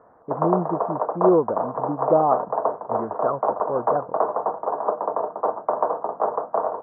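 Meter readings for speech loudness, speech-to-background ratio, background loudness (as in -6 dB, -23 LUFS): -24.5 LUFS, 1.0 dB, -25.5 LUFS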